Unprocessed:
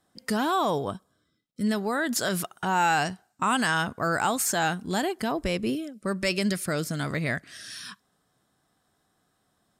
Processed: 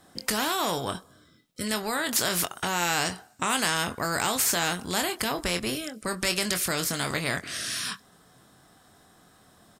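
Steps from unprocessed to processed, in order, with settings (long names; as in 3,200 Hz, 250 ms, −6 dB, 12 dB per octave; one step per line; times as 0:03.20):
double-tracking delay 23 ms −9 dB
every bin compressed towards the loudest bin 2 to 1
level +1.5 dB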